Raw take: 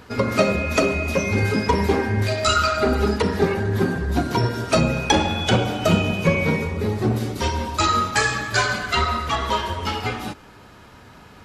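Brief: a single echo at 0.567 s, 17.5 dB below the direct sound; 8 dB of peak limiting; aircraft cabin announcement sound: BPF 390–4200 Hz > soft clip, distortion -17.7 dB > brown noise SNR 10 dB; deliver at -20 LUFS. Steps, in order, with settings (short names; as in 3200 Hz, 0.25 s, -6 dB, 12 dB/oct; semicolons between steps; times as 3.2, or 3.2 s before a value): limiter -11.5 dBFS; BPF 390–4200 Hz; echo 0.567 s -17.5 dB; soft clip -17.5 dBFS; brown noise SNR 10 dB; gain +6.5 dB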